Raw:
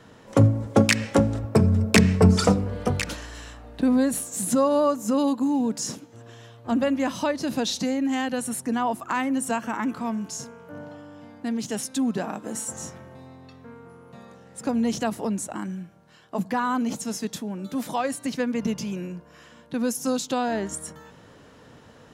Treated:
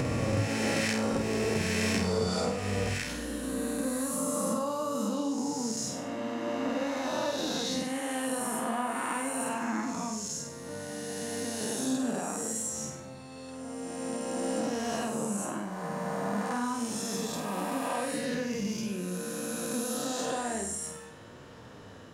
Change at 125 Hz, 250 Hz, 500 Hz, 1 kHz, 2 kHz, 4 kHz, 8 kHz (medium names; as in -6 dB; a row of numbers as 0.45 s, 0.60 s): -11.0 dB, -8.0 dB, -5.5 dB, -5.0 dB, -4.5 dB, -3.5 dB, -1.5 dB